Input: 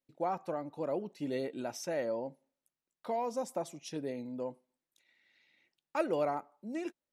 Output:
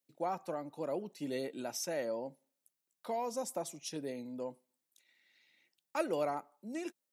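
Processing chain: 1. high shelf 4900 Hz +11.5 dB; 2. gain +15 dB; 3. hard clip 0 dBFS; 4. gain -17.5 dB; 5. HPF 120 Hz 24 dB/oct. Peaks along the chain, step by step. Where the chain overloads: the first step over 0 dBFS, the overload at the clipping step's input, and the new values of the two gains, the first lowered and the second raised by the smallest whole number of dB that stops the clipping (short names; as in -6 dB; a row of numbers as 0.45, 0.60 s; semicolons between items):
-19.0, -4.0, -4.0, -21.5, -20.5 dBFS; no overload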